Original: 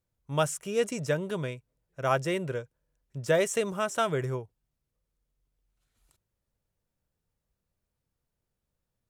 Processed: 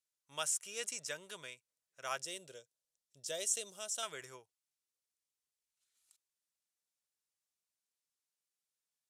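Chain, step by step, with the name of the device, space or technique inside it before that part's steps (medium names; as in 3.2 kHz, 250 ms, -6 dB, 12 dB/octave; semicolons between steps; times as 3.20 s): piezo pickup straight into a mixer (low-pass 8.4 kHz 12 dB/octave; differentiator); 2.24–4.03 s: high-order bell 1.5 kHz -11 dB; trim +3.5 dB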